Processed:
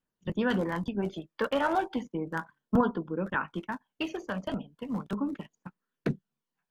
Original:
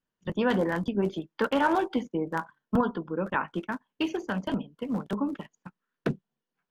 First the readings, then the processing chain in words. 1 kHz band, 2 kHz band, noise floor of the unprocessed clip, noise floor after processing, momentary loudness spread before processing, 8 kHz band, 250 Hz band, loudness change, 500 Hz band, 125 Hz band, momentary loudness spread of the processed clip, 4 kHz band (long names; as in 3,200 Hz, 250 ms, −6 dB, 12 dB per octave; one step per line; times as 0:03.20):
−2.5 dB, −2.0 dB, below −85 dBFS, below −85 dBFS, 9 LU, can't be measured, −2.5 dB, −2.5 dB, −3.0 dB, −1.0 dB, 11 LU, −2.0 dB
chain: phase shifter 0.35 Hz, delay 1.8 ms, feedback 35%
level −3 dB